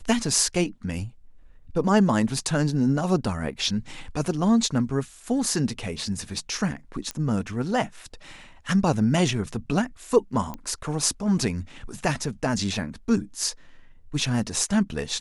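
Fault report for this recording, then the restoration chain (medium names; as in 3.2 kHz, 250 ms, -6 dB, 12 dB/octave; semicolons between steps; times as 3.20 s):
7.11 s: pop -15 dBFS
10.54 s: pop -20 dBFS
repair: de-click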